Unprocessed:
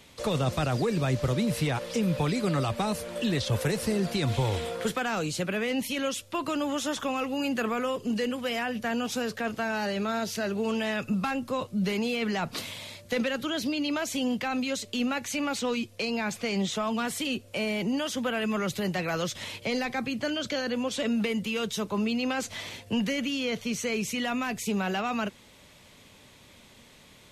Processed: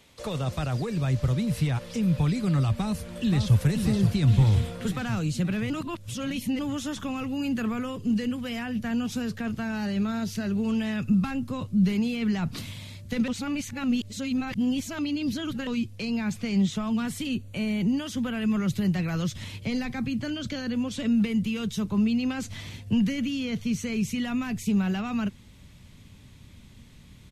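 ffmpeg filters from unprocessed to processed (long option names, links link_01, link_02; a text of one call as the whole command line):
ffmpeg -i in.wav -filter_complex "[0:a]asplit=2[link_01][link_02];[link_02]afade=type=in:start_time=2.73:duration=0.01,afade=type=out:start_time=3.6:duration=0.01,aecho=0:1:530|1060|1590|2120|2650|3180|3710|4240|4770|5300:0.501187|0.325772|0.211752|0.137639|0.0894651|0.0581523|0.037799|0.0245693|0.0159701|0.0103805[link_03];[link_01][link_03]amix=inputs=2:normalize=0,asettb=1/sr,asplit=3[link_04][link_05][link_06];[link_04]atrim=end=17.294[link_07];[link_05]atrim=start=17.29:end=17.86,asetpts=PTS-STARTPTS,afade=type=in:duration=0.004:curve=qsin,afade=type=out:start_time=0.566:duration=0.004:curve=qsin,asuperstop=centerf=5200:order=20:qfactor=5.7[link_08];[link_06]atrim=start=17.856[link_09];[link_07][link_08]acrossfade=duration=0.004:curve1=hsin:curve2=qsin[link_10];[link_10][link_09]acrossfade=duration=0.004:curve1=qsin:curve2=hsin,asplit=5[link_11][link_12][link_13][link_14][link_15];[link_11]atrim=end=5.702[link_16];[link_12]atrim=start=5.698:end=6.592,asetpts=PTS-STARTPTS,areverse[link_17];[link_13]atrim=start=6.588:end=13.282[link_18];[link_14]atrim=start=13.278:end=15.672,asetpts=PTS-STARTPTS,areverse[link_19];[link_15]atrim=start=15.668[link_20];[link_16][link_17]acrossfade=duration=0.004:curve1=hsin:curve2=hsin[link_21];[link_21][link_18]acrossfade=duration=0.004:curve1=hsin:curve2=hsin[link_22];[link_22][link_19]acrossfade=duration=0.004:curve1=hsin:curve2=hsin[link_23];[link_23][link_20]acrossfade=duration=0.004:curve1=hsin:curve2=hsin,asubboost=boost=7.5:cutoff=190,volume=-4dB" out.wav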